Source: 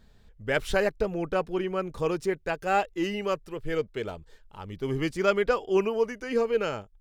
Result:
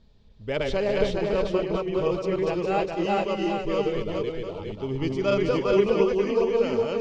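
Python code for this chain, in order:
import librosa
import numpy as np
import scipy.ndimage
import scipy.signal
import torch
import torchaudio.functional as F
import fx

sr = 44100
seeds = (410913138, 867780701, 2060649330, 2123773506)

p1 = fx.reverse_delay(x, sr, ms=295, wet_db=-0.5)
p2 = scipy.signal.sosfilt(scipy.signal.butter(4, 5700.0, 'lowpass', fs=sr, output='sos'), p1)
p3 = fx.peak_eq(p2, sr, hz=1600.0, db=-11.5, octaves=0.68)
p4 = fx.notch(p3, sr, hz=740.0, q=12.0)
y = p4 + fx.echo_multitap(p4, sr, ms=(201, 409, 696), db=(-11.5, -4.0, -11.0), dry=0)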